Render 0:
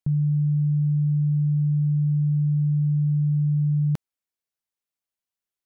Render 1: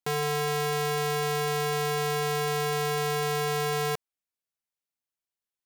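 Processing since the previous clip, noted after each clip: wrapped overs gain 21 dB; gain -3.5 dB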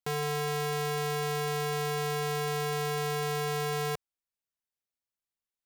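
low shelf 110 Hz +6.5 dB; gain -4 dB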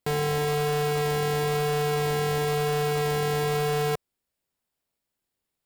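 notch 6100 Hz, Q 9.1; in parallel at -8.5 dB: decimation with a swept rate 28×, swing 60% 1 Hz; on the sum: soft clip -31 dBFS, distortion -14 dB; gain +8.5 dB

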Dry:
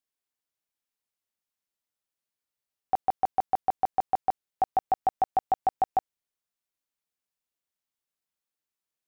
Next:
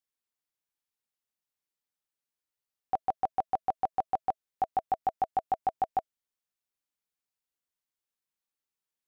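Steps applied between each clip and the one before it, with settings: notch 650 Hz, Q 12; gain -3 dB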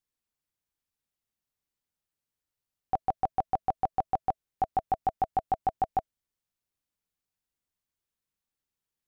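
low shelf 220 Hz +12 dB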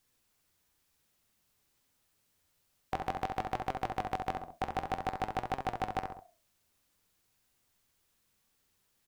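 flange 0.54 Hz, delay 7.3 ms, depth 6.6 ms, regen +78%; on a send: feedback echo 67 ms, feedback 29%, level -8.5 dB; on the sum: spectral compressor 2:1; gain +3 dB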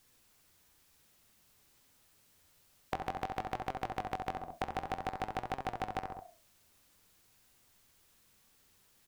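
compressor 4:1, threshold -43 dBFS, peak gain reduction 12 dB; gain +7.5 dB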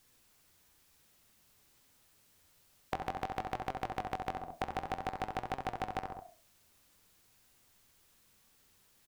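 echo 98 ms -22 dB

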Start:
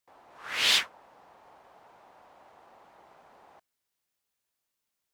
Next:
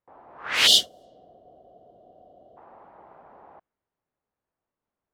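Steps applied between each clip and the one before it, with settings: low-pass opened by the level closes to 1000 Hz, open at -30.5 dBFS; spectral gain 0.67–2.57, 770–2800 Hz -27 dB; gain +7.5 dB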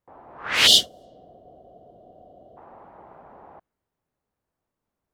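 low shelf 270 Hz +6.5 dB; gain +2 dB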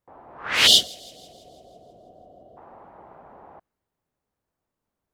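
thin delay 0.164 s, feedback 56%, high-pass 4700 Hz, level -21 dB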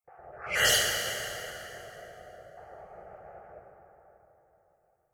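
random spectral dropouts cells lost 25%; fixed phaser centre 1000 Hz, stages 6; plate-style reverb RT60 3.9 s, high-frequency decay 0.6×, DRR -0.5 dB

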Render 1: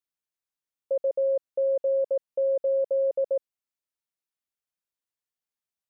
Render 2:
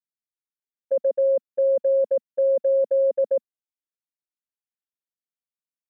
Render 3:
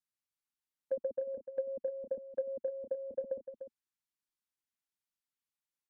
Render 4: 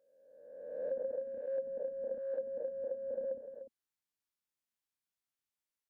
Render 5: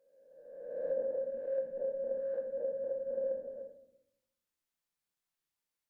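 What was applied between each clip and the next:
gate -28 dBFS, range -17 dB; bell 230 Hz +10 dB 0.94 oct; gain +3.5 dB
band shelf 530 Hz -10 dB 1 oct; treble ducked by the level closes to 320 Hz, closed at -27.5 dBFS; echo 0.298 s -10 dB
spectral swells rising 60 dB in 1.36 s; gain -4 dB
reverb RT60 0.80 s, pre-delay 6 ms, DRR 1.5 dB

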